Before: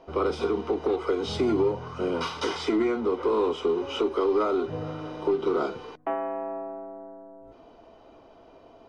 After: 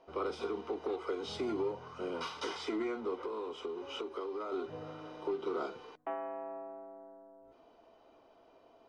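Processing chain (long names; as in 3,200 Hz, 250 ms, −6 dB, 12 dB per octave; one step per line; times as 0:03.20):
low-shelf EQ 220 Hz −10 dB
0:03.21–0:04.52: downward compressor, threshold −28 dBFS, peak gain reduction 6.5 dB
level −8.5 dB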